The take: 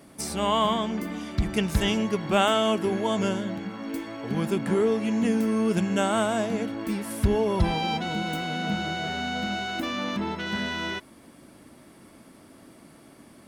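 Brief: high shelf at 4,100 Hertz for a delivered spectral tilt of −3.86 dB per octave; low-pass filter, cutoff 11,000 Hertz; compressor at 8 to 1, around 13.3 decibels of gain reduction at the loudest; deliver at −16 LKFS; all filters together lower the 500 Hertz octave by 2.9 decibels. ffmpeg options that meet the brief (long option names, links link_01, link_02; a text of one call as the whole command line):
ffmpeg -i in.wav -af "lowpass=11000,equalizer=frequency=500:width_type=o:gain=-4,highshelf=frequency=4100:gain=8,acompressor=threshold=-31dB:ratio=8,volume=18.5dB" out.wav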